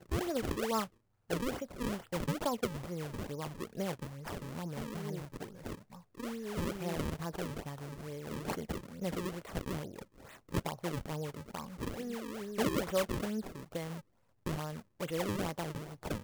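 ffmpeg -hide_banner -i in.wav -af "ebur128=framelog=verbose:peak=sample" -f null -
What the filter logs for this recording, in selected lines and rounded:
Integrated loudness:
  I:         -38.6 LUFS
  Threshold: -48.8 LUFS
Loudness range:
  LRA:         4.3 LU
  Threshold: -59.1 LUFS
  LRA low:   -41.2 LUFS
  LRA high:  -37.0 LUFS
Sample peak:
  Peak:      -20.9 dBFS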